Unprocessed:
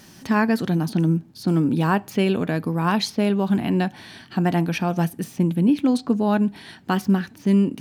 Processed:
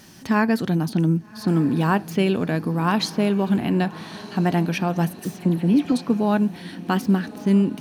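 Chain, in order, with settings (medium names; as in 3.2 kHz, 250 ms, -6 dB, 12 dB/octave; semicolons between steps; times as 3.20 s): 5.19–5.92 s: phase dispersion lows, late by 63 ms, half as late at 1.7 kHz; on a send: echo that smears into a reverb 1221 ms, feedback 41%, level -16 dB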